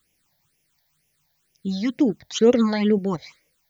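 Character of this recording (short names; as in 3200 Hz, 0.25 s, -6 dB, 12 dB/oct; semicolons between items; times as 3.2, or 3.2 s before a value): a quantiser's noise floor 12-bit, dither triangular; phasing stages 8, 2.1 Hz, lowest notch 350–1300 Hz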